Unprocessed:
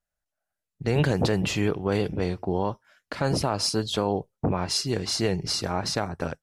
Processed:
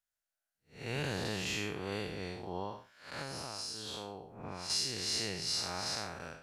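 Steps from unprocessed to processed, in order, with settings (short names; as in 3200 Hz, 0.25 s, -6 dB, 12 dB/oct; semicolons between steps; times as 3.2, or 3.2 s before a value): time blur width 0.188 s; tilt shelf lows -7.5 dB; 3.21–4.7 compressor, threshold -32 dBFS, peak gain reduction 9 dB; gain -6.5 dB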